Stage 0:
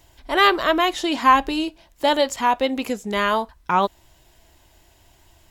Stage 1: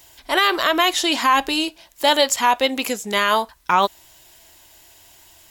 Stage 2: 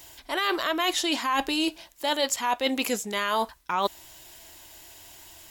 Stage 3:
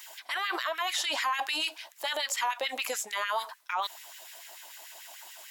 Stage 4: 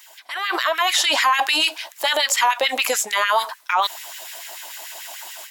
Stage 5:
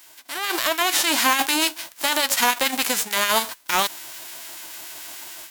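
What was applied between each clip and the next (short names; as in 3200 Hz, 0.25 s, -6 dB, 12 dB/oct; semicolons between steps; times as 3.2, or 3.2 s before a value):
tilt +2.5 dB/oct; limiter -9 dBFS, peak gain reduction 8 dB; gain +3.5 dB
bell 310 Hz +2.5 dB 0.38 oct; reverse; compressor 6:1, threshold -24 dBFS, peak gain reduction 12.5 dB; reverse; gain +1 dB
LFO high-pass sine 6.8 Hz 610–2100 Hz; limiter -21 dBFS, peak gain reduction 11.5 dB
AGC gain up to 12 dB
spectral whitening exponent 0.3; gain -1.5 dB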